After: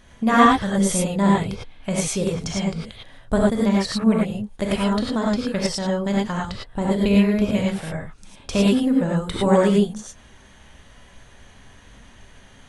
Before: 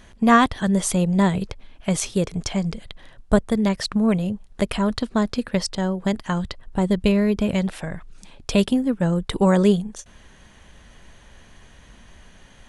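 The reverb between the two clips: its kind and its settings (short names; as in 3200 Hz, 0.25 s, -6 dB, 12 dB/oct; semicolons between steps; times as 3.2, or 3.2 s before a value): non-linear reverb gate 0.13 s rising, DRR -4 dB; gain -4 dB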